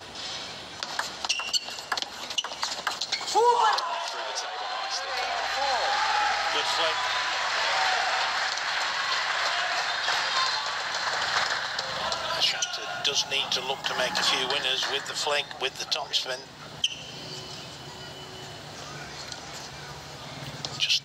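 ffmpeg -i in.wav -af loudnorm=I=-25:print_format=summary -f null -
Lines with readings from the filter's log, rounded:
Input Integrated:    -26.7 LUFS
Input True Peak:     -11.6 dBTP
Input LRA:             6.8 LU
Input Threshold:     -37.5 LUFS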